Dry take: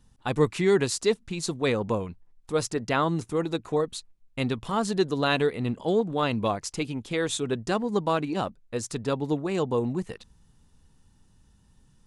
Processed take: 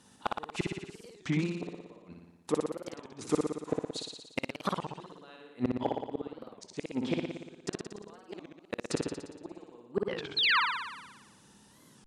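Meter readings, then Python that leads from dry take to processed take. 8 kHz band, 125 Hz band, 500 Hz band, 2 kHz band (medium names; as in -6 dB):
-11.0 dB, -9.5 dB, -11.0 dB, -2.0 dB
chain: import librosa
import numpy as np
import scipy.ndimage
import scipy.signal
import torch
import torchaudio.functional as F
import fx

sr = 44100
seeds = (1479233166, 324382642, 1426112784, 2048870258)

p1 = scipy.signal.sosfilt(scipy.signal.butter(2, 250.0, 'highpass', fs=sr, output='sos'), x)
p2 = fx.gate_flip(p1, sr, shuts_db=-22.0, range_db=-38)
p3 = fx.rider(p2, sr, range_db=4, speed_s=2.0)
p4 = p2 + F.gain(torch.from_numpy(p3), 2.5).numpy()
p5 = fx.env_lowpass_down(p4, sr, base_hz=1600.0, full_db=-28.5)
p6 = fx.spec_paint(p5, sr, seeds[0], shape='fall', start_s=10.37, length_s=0.23, low_hz=880.0, high_hz=5000.0, level_db=-27.0)
p7 = np.clip(10.0 ** (17.0 / 20.0) * p6, -1.0, 1.0) / 10.0 ** (17.0 / 20.0)
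p8 = fx.room_flutter(p7, sr, wall_m=10.0, rt60_s=1.1)
y = fx.record_warp(p8, sr, rpm=33.33, depth_cents=250.0)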